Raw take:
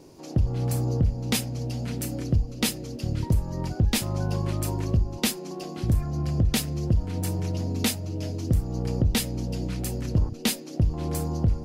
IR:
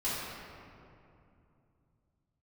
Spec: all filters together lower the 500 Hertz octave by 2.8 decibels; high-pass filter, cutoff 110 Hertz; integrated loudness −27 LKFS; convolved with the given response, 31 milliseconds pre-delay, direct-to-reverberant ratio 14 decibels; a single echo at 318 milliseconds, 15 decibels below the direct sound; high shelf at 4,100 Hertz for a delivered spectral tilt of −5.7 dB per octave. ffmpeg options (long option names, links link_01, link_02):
-filter_complex "[0:a]highpass=110,equalizer=frequency=500:width_type=o:gain=-3.5,highshelf=frequency=4100:gain=-6.5,aecho=1:1:318:0.178,asplit=2[link_01][link_02];[1:a]atrim=start_sample=2205,adelay=31[link_03];[link_02][link_03]afir=irnorm=-1:irlink=0,volume=-21.5dB[link_04];[link_01][link_04]amix=inputs=2:normalize=0,volume=3dB"